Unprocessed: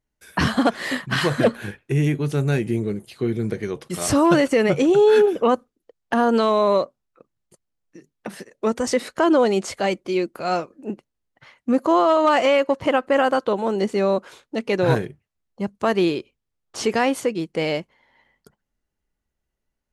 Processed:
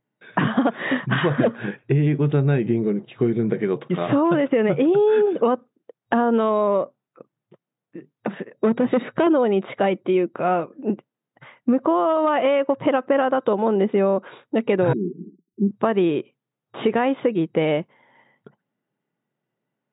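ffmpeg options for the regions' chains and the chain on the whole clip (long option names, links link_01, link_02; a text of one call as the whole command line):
ffmpeg -i in.wav -filter_complex "[0:a]asettb=1/sr,asplit=3[link_01][link_02][link_03];[link_01]atrim=end=8.544[link_04];[link_02]atrim=start=8.54:end=9.27,asetpts=PTS-STARTPTS,afade=type=in:duration=0.004:curve=qsin,afade=type=out:start_time=0.726:duration=0.004:curve=qsin,bass=frequency=250:gain=8,treble=frequency=4000:gain=-3,volume=17dB,asoftclip=hard,volume=-17dB[link_05];[link_03]atrim=start=9.266[link_06];[link_04][link_05]acrossfade=duration=0.004:curve1=hsin:curve2=qsin[link_07];[link_07][link_06]acrossfade=duration=0.004:curve1=qsin:curve2=hsin,asettb=1/sr,asplit=3[link_08][link_09][link_10];[link_08]atrim=end=14.934[link_11];[link_09]atrim=start=14.93:end=15.71,asetpts=PTS-STARTPTS,afade=type=in:duration=0.004:curve=qsin,afade=type=out:start_time=0.776:duration=0.004:curve=qsin,aeval=exprs='val(0)+0.5*0.0398*sgn(val(0))':channel_layout=same,asuperpass=centerf=260:order=20:qfactor=1.1[link_12];[link_10]atrim=start=15.706[link_13];[link_11][link_12]acrossfade=duration=0.004:curve1=hsin:curve2=qsin[link_14];[link_14][link_13]acrossfade=duration=0.004:curve1=qsin:curve2=hsin,acompressor=threshold=-22dB:ratio=6,afftfilt=real='re*between(b*sr/4096,110,3800)':imag='im*between(b*sr/4096,110,3800)':win_size=4096:overlap=0.75,highshelf=frequency=2300:gain=-10.5,volume=7dB" out.wav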